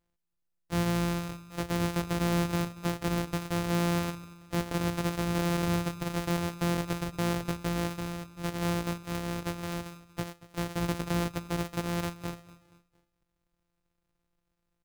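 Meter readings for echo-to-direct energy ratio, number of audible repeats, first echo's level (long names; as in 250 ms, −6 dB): −18.0 dB, 3, −19.0 dB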